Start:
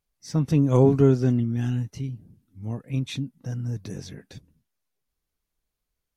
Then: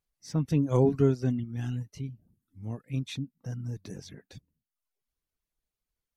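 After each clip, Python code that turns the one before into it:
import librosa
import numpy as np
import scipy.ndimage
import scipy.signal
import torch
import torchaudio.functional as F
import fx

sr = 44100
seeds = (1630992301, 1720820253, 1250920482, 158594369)

y = fx.dereverb_blind(x, sr, rt60_s=0.71)
y = y * 10.0 ** (-4.5 / 20.0)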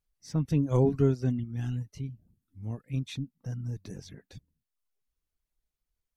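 y = fx.low_shelf(x, sr, hz=76.0, db=9.5)
y = y * 10.0 ** (-2.0 / 20.0)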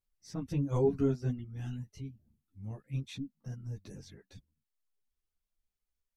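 y = fx.ensemble(x, sr)
y = y * 10.0 ** (-1.5 / 20.0)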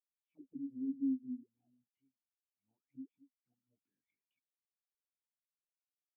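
y = fx.auto_wah(x, sr, base_hz=260.0, top_hz=3500.0, q=17.0, full_db=-31.5, direction='down')
y = fx.formant_cascade(y, sr, vowel='i')
y = y * 10.0 ** (3.0 / 20.0)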